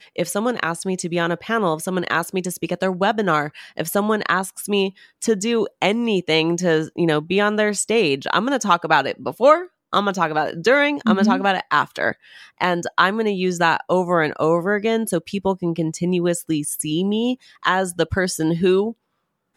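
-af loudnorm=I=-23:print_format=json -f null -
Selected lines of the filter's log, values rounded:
"input_i" : "-20.4",
"input_tp" : "-1.7",
"input_lra" : "3.3",
"input_thresh" : "-30.4",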